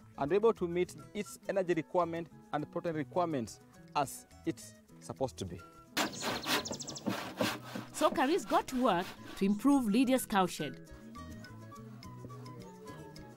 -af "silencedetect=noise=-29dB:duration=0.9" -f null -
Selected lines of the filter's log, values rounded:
silence_start: 10.64
silence_end: 13.36 | silence_duration: 2.72